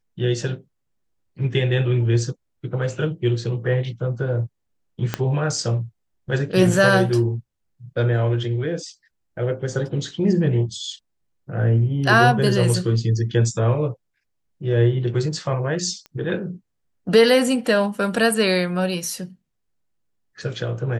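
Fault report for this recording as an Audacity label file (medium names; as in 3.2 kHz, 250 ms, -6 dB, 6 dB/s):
5.140000	5.140000	pop -7 dBFS
16.060000	16.060000	pop -24 dBFS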